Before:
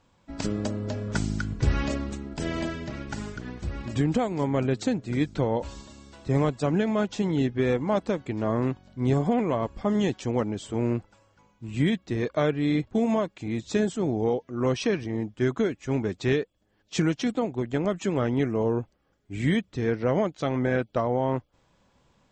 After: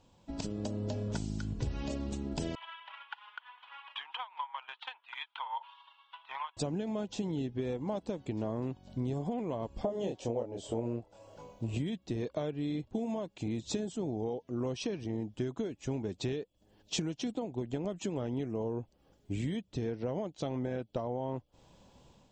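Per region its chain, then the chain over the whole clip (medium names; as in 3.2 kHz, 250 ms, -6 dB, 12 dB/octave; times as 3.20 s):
2.55–6.57 s: Chebyshev band-pass 940–3300 Hz, order 4 + peaking EQ 2.2 kHz -5.5 dB 1.4 oct + transient shaper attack +8 dB, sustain -4 dB
9.84–11.79 s: peaking EQ 580 Hz +13 dB 0.94 oct + doubling 26 ms -3 dB
whole clip: compression 10:1, threshold -37 dBFS; high-order bell 1.6 kHz -8 dB 1.2 oct; level rider gain up to 5 dB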